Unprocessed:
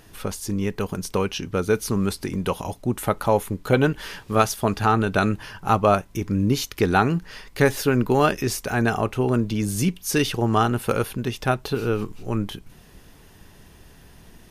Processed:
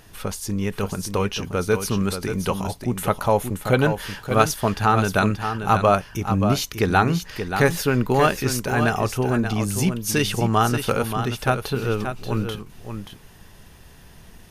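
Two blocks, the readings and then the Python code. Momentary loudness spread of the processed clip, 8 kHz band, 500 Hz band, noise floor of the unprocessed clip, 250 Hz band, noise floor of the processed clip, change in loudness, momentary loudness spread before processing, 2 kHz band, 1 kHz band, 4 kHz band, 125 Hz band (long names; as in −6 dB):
8 LU, +2.0 dB, +0.5 dB, −50 dBFS, 0.0 dB, −47 dBFS, +1.0 dB, 8 LU, +2.0 dB, +2.0 dB, +2.0 dB, +1.5 dB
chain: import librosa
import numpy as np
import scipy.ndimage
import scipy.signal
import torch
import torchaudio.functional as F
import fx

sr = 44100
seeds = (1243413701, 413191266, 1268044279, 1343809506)

p1 = fx.peak_eq(x, sr, hz=320.0, db=-4.0, octaves=0.95)
p2 = p1 + fx.echo_single(p1, sr, ms=580, db=-8.0, dry=0)
y = F.gain(torch.from_numpy(p2), 1.5).numpy()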